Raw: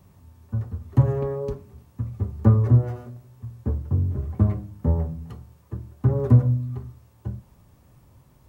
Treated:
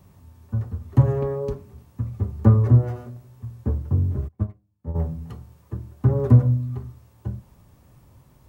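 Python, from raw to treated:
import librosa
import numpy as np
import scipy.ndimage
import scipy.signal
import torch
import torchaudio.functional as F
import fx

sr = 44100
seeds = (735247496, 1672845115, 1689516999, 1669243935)

y = fx.upward_expand(x, sr, threshold_db=-31.0, expansion=2.5, at=(4.27, 4.94), fade=0.02)
y = F.gain(torch.from_numpy(y), 1.5).numpy()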